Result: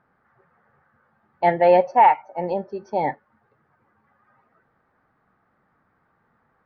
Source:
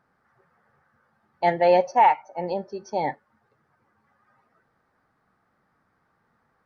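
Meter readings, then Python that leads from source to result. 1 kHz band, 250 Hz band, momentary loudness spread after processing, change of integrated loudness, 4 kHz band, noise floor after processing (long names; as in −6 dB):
+3.0 dB, +3.0 dB, 12 LU, +3.0 dB, can't be measured, −68 dBFS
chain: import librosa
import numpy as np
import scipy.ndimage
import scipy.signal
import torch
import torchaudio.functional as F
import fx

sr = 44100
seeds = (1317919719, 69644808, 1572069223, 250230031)

y = scipy.signal.sosfilt(scipy.signal.butter(2, 2700.0, 'lowpass', fs=sr, output='sos'), x)
y = y * 10.0 ** (3.0 / 20.0)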